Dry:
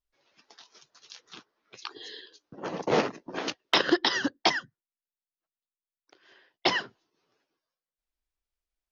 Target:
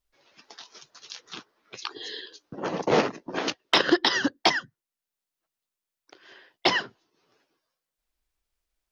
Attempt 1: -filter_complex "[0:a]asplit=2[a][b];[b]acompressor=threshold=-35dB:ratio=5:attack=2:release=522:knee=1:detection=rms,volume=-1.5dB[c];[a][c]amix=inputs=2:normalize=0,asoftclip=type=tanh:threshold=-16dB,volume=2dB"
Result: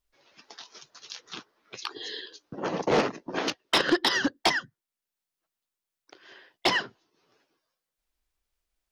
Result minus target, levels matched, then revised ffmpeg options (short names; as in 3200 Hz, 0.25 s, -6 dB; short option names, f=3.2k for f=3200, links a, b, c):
soft clip: distortion +17 dB
-filter_complex "[0:a]asplit=2[a][b];[b]acompressor=threshold=-35dB:ratio=5:attack=2:release=522:knee=1:detection=rms,volume=-1.5dB[c];[a][c]amix=inputs=2:normalize=0,asoftclip=type=tanh:threshold=-5dB,volume=2dB"